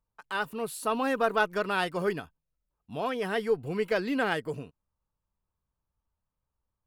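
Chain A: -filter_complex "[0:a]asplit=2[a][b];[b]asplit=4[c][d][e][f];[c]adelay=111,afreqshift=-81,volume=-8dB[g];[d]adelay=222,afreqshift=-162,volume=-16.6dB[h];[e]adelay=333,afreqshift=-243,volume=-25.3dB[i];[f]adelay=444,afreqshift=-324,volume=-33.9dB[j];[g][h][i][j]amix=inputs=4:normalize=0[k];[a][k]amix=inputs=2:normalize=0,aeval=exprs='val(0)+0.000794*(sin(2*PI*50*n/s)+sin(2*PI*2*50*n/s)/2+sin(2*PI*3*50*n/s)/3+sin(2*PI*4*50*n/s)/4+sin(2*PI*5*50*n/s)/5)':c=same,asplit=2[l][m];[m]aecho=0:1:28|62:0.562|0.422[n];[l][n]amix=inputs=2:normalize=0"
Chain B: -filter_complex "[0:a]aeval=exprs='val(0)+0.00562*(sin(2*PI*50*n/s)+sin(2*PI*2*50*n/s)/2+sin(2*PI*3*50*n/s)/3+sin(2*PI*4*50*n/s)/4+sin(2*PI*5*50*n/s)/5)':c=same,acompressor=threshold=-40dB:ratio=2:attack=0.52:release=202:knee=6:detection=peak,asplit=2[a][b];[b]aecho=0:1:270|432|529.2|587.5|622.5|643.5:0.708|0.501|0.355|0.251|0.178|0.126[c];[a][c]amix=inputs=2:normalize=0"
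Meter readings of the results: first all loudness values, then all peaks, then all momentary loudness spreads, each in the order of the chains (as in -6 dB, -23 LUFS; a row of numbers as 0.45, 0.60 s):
-27.5, -37.5 LUFS; -9.5, -22.5 dBFS; 11, 14 LU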